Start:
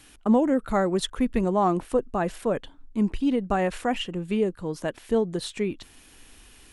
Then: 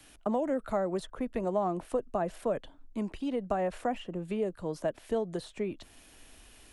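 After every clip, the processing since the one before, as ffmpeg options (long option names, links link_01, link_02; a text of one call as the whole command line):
ffmpeg -i in.wav -filter_complex "[0:a]equalizer=frequency=630:width=3.7:gain=8,acrossover=split=160|430|1400[link_01][link_02][link_03][link_04];[link_01]acompressor=threshold=-41dB:ratio=4[link_05];[link_02]acompressor=threshold=-32dB:ratio=4[link_06];[link_03]acompressor=threshold=-26dB:ratio=4[link_07];[link_04]acompressor=threshold=-45dB:ratio=4[link_08];[link_05][link_06][link_07][link_08]amix=inputs=4:normalize=0,volume=-4dB" out.wav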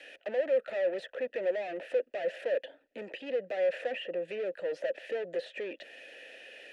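ffmpeg -i in.wav -filter_complex "[0:a]asplit=2[link_01][link_02];[link_02]highpass=frequency=720:poles=1,volume=30dB,asoftclip=type=tanh:threshold=-17dB[link_03];[link_01][link_03]amix=inputs=2:normalize=0,lowpass=frequency=4900:poles=1,volume=-6dB,asplit=3[link_04][link_05][link_06];[link_04]bandpass=frequency=530:width_type=q:width=8,volume=0dB[link_07];[link_05]bandpass=frequency=1840:width_type=q:width=8,volume=-6dB[link_08];[link_06]bandpass=frequency=2480:width_type=q:width=8,volume=-9dB[link_09];[link_07][link_08][link_09]amix=inputs=3:normalize=0" out.wav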